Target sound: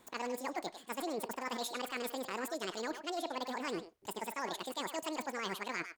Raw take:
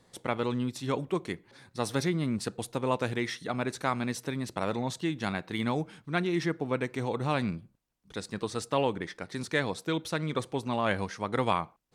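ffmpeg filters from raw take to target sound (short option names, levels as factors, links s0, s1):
-filter_complex "[0:a]areverse,acompressor=threshold=0.0158:ratio=5,areverse,asplit=2[s0][s1];[s1]adelay=200,highpass=300,lowpass=3400,asoftclip=type=hard:threshold=0.0251,volume=0.447[s2];[s0][s2]amix=inputs=2:normalize=0,asetrate=88200,aresample=44100"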